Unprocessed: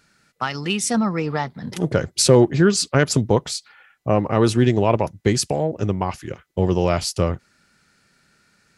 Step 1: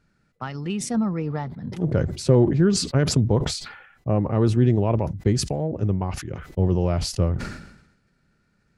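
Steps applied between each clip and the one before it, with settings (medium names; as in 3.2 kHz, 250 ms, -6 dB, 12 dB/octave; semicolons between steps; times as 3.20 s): tilt EQ -3 dB/octave; decay stretcher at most 66 dB/s; trim -9 dB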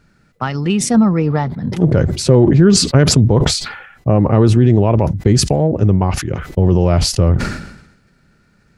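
loudness maximiser +12.5 dB; trim -1 dB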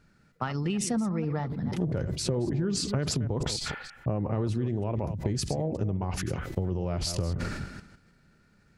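chunks repeated in reverse 156 ms, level -12 dB; compression, threshold -18 dBFS, peak gain reduction 12.5 dB; trim -8 dB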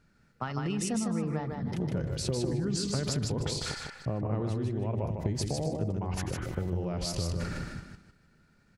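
feedback delay 153 ms, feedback 17%, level -4 dB; trim -3.5 dB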